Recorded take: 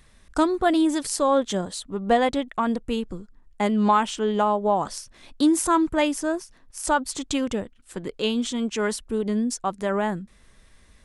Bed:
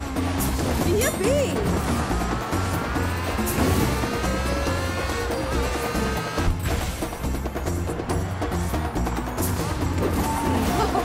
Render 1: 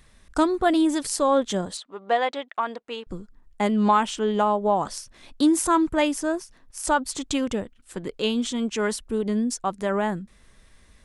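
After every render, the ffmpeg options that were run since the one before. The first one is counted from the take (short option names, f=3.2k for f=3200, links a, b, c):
-filter_complex "[0:a]asettb=1/sr,asplit=3[a][b][c];[a]atrim=end=1.774[d];[b]atrim=start=1.77:end=3.07,asetpts=PTS-STARTPTS,afade=t=in:d=0.004:c=qsin,afade=t=out:st=1.296:d=0.004:c=qsin,highpass=560,lowpass=4.5k[e];[c]atrim=start=3.066[f];[d][e]acrossfade=d=0.004:c1=hsin:c2=qsin[g];[g][f]acrossfade=d=0.004:c1=qsin:c2=hsin"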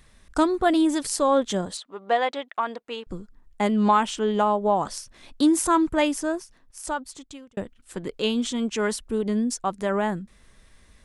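-filter_complex "[0:a]asplit=2[a][b];[a]atrim=end=7.57,asetpts=PTS-STARTPTS,afade=t=out:st=6.13:d=1.44[c];[b]atrim=start=7.57,asetpts=PTS-STARTPTS,afade=t=in:d=0.004:c=hsin[d];[c][d]concat=n=2:v=0:a=1"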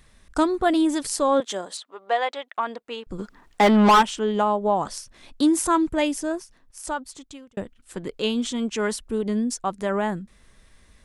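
-filter_complex "[0:a]asettb=1/sr,asplit=3[a][b][c];[a]atrim=end=1.404[d];[b]atrim=start=1.4:end=2.55,asetpts=PTS-STARTPTS,afade=t=in:d=0.004:c=qsin,afade=t=out:st=1.146:d=0.004:c=qsin,highpass=440[e];[c]atrim=start=2.546[f];[d][e]acrossfade=d=0.004:c1=hsin:c2=qsin[g];[g][f]acrossfade=d=0.004:c1=qsin:c2=hsin,asplit=3[h][i][j];[h]afade=t=out:st=3.18:d=0.02[k];[i]asplit=2[l][m];[m]highpass=f=720:p=1,volume=26dB,asoftclip=type=tanh:threshold=-8dB[n];[l][n]amix=inputs=2:normalize=0,lowpass=f=3.6k:p=1,volume=-6dB,afade=t=in:st=3.18:d=0.02,afade=t=out:st=4.01:d=0.02[o];[j]afade=t=in:st=4.01:d=0.02[p];[k][o][p]amix=inputs=3:normalize=0,asettb=1/sr,asplit=3[q][r][s];[q]atrim=end=5.764[t];[r]atrim=start=5.76:end=6.31,asetpts=PTS-STARTPTS,afade=t=in:d=0.004:c=qsin,afade=t=out:st=0.546:d=0.004:c=qsin,equalizer=f=1.2k:t=o:w=0.91:g=-5.5[u];[s]atrim=start=6.306[v];[t][u]acrossfade=d=0.004:c1=hsin:c2=qsin[w];[w][v]acrossfade=d=0.004:c1=qsin:c2=hsin"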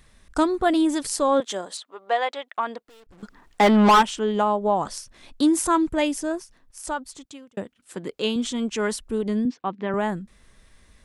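-filter_complex "[0:a]asettb=1/sr,asplit=3[a][b][c];[a]atrim=end=2.834[d];[b]atrim=start=2.83:end=3.23,asetpts=PTS-STARTPTS,afade=t=in:d=0.004:c=qsin,afade=t=out:st=0.396:d=0.004:c=qsin,aeval=exprs='(tanh(316*val(0)+0.35)-tanh(0.35))/316':c=same[e];[c]atrim=start=3.226[f];[d][e]acrossfade=d=0.004:c1=hsin:c2=qsin[g];[g][f]acrossfade=d=0.004:c1=qsin:c2=hsin,asettb=1/sr,asplit=3[h][i][j];[h]atrim=end=7.254[k];[i]atrim=start=7.25:end=8.36,asetpts=PTS-STARTPTS,afade=t=in:d=0.004:c=qsin,afade=t=out:st=1.106:d=0.004:c=qsin,highpass=140[l];[j]atrim=start=8.356[m];[k][l]acrossfade=d=0.004:c1=hsin:c2=qsin[n];[n][m]acrossfade=d=0.004:c1=qsin:c2=hsin,asettb=1/sr,asplit=3[o][p][q];[o]atrim=end=9.454[r];[p]atrim=start=9.45:end=9.94,asetpts=PTS-STARTPTS,afade=t=in:d=0.004:c=qsin,afade=t=out:st=0.486:d=0.004:c=qsin,highpass=f=140:w=0.5412,highpass=f=140:w=1.3066,equalizer=f=270:t=q:w=4:g=5,equalizer=f=620:t=q:w=4:g=-6,equalizer=f=1.4k:t=q:w=4:g=-4,lowpass=f=3.4k:w=0.5412,lowpass=f=3.4k:w=1.3066[s];[q]atrim=start=9.936[t];[r][s]acrossfade=d=0.004:c1=hsin:c2=qsin[u];[u][t]acrossfade=d=0.004:c1=qsin:c2=hsin"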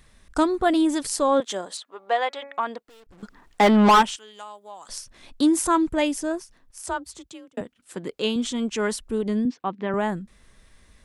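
-filter_complex "[0:a]asettb=1/sr,asplit=3[a][b][c];[a]atrim=end=1.824[d];[b]atrim=start=1.82:end=2.61,asetpts=PTS-STARTPTS,afade=t=in:d=0.004:c=qsin,afade=t=out:st=0.786:d=0.004:c=qsin,bandreject=f=279.7:t=h:w=4,bandreject=f=559.4:t=h:w=4,bandreject=f=839.1:t=h:w=4,bandreject=f=1.1188k:t=h:w=4,bandreject=f=1.3985k:t=h:w=4,bandreject=f=1.6782k:t=h:w=4,bandreject=f=1.9579k:t=h:w=4,bandreject=f=2.2376k:t=h:w=4,bandreject=f=2.5173k:t=h:w=4[e];[c]atrim=start=2.606[f];[d][e]acrossfade=d=0.004:c1=hsin:c2=qsin[g];[g][f]acrossfade=d=0.004:c1=qsin:c2=hsin,asettb=1/sr,asplit=3[h][i][j];[h]atrim=end=4.164[k];[i]atrim=start=4.16:end=4.89,asetpts=PTS-STARTPTS,afade=t=in:d=0.004:c=qsin,afade=t=out:st=0.726:d=0.004:c=qsin,aderivative[l];[j]atrim=start=4.886[m];[k][l]acrossfade=d=0.004:c1=hsin:c2=qsin[n];[n][m]acrossfade=d=0.004:c1=qsin:c2=hsin,asettb=1/sr,asplit=3[o][p][q];[o]atrim=end=6.854[r];[p]atrim=start=6.85:end=7.61,asetpts=PTS-STARTPTS,afade=t=in:d=0.004:c=qsin,afade=t=out:st=0.756:d=0.004:c=qsin,afreqshift=33[s];[q]atrim=start=7.606[t];[r][s]acrossfade=d=0.004:c1=hsin:c2=qsin[u];[u][t]acrossfade=d=0.004:c1=qsin:c2=hsin"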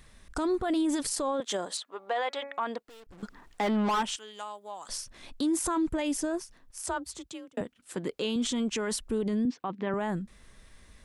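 -af "acompressor=threshold=-21dB:ratio=3,alimiter=limit=-22dB:level=0:latency=1:release=13"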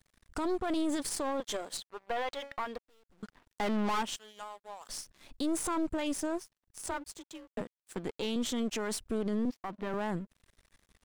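-af "aeval=exprs='sgn(val(0))*max(abs(val(0))-0.00282,0)':c=same,aeval=exprs='(tanh(20*val(0)+0.6)-tanh(0.6))/20':c=same"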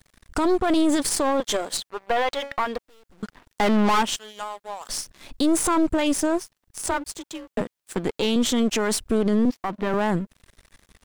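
-af "volume=11.5dB"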